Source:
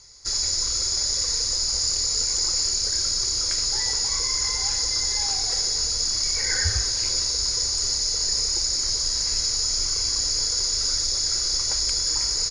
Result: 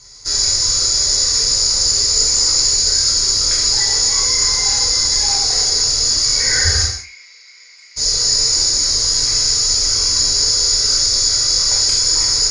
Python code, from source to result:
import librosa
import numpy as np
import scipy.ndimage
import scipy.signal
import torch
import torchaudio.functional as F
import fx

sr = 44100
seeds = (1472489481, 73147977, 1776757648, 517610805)

p1 = fx.bandpass_q(x, sr, hz=2200.0, q=14.0, at=(6.84, 7.96), fade=0.02)
p2 = p1 + fx.echo_single(p1, sr, ms=106, db=-17.5, dry=0)
p3 = fx.rev_gated(p2, sr, seeds[0], gate_ms=220, shape='falling', drr_db=-4.0)
y = p3 * 10.0 ** (3.5 / 20.0)